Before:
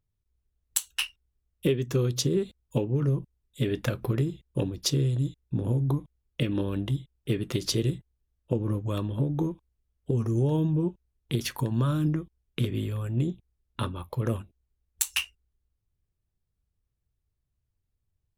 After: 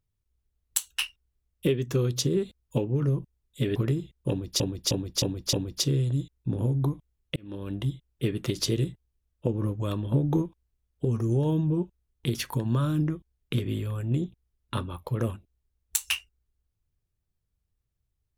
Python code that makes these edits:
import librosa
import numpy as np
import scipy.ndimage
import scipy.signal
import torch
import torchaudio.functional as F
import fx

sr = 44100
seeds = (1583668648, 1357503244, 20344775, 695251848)

y = fx.edit(x, sr, fx.cut(start_s=3.76, length_s=0.3),
    fx.repeat(start_s=4.59, length_s=0.31, count=5),
    fx.fade_in_span(start_s=6.42, length_s=0.53),
    fx.clip_gain(start_s=9.18, length_s=0.3, db=3.0), tone=tone)